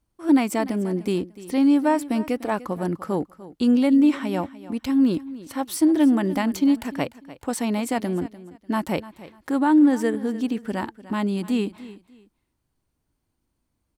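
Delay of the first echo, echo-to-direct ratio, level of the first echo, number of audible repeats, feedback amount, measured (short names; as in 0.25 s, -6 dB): 0.297 s, -17.0 dB, -17.0 dB, 2, 25%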